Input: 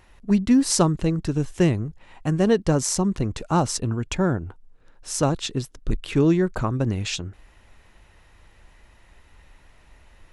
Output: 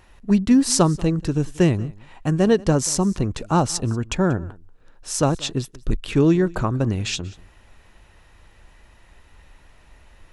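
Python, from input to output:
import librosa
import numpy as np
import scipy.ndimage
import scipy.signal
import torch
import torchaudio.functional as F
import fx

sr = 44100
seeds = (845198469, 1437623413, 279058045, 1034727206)

y = fx.notch(x, sr, hz=2100.0, q=22.0)
y = y + 10.0 ** (-22.5 / 20.0) * np.pad(y, (int(186 * sr / 1000.0), 0))[:len(y)]
y = y * 10.0 ** (2.0 / 20.0)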